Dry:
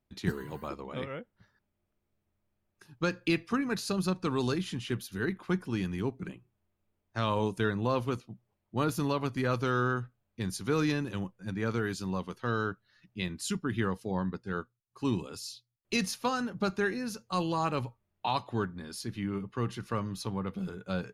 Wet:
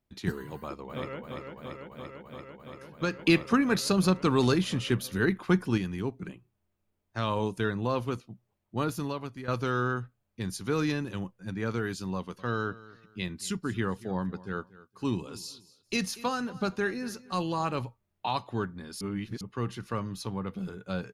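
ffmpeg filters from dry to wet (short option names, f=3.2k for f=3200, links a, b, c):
-filter_complex "[0:a]asplit=2[a][b];[b]afade=t=in:st=0.55:d=0.01,afade=t=out:st=1.2:d=0.01,aecho=0:1:340|680|1020|1360|1700|2040|2380|2720|3060|3400|3740|4080:0.595662|0.506313|0.430366|0.365811|0.310939|0.264298|0.224654|0.190956|0.162312|0.137965|0.117271|0.09968[c];[a][c]amix=inputs=2:normalize=0,asettb=1/sr,asplit=3[d][e][f];[d]atrim=end=3.194[g];[e]atrim=start=3.19:end=5.78,asetpts=PTS-STARTPTS,afade=t=in:d=0.004:c=qsin,afade=t=out:st=2.586:d=0.004:c=qsin,acontrast=52[h];[f]atrim=start=5.776[i];[g][h]acrossfade=d=0.004:c1=hsin:c2=qsin[j];[j][i]acrossfade=d=0.004:c1=qsin:c2=hsin,asettb=1/sr,asplit=3[k][l][m];[k]atrim=end=12.154[n];[l]atrim=start=12.15:end=17.82,asetpts=PTS-STARTPTS,afade=t=in:d=0.004:c=qsin,afade=t=out:st=5.666:d=0.004:c=qsin,aecho=1:1:235|470:0.112|0.0325,atrim=end_sample=250047[o];[m]atrim=start=17.816[p];[n][o]acrossfade=d=0.004:c1=hsin:c2=qsin[q];[q][p]acrossfade=d=0.004:c1=qsin:c2=hsin,asplit=4[r][s][t][u];[r]atrim=end=9.48,asetpts=PTS-STARTPTS,afade=t=out:st=8.78:d=0.7:silence=0.251189[v];[s]atrim=start=9.48:end=19.012,asetpts=PTS-STARTPTS,afade=t=in:d=0.004:c=hsin:silence=0.251189[w];[t]atrim=start=19.008:end=19.412,asetpts=PTS-STARTPTS,areverse[x];[u]atrim=start=19.408[y];[v][w]concat=n=2:v=0:a=1[z];[z][x]acrossfade=d=0.004:c1=hsin:c2=hsin[aa];[aa][y]acrossfade=d=0.004:c1=hsin:c2=hsin"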